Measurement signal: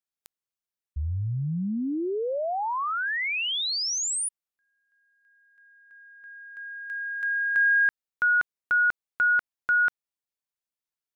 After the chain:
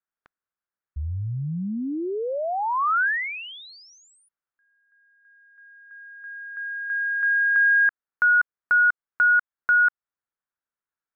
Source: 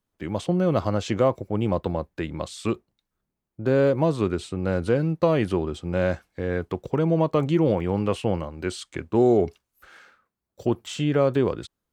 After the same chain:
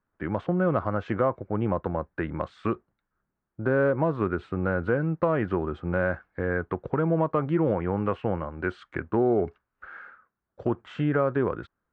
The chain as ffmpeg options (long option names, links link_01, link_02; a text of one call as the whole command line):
ffmpeg -i in.wav -af "lowpass=frequency=1500:width_type=q:width=2.7,acompressor=threshold=-19dB:ratio=2:attack=1.9:release=980:knee=1:detection=peak" out.wav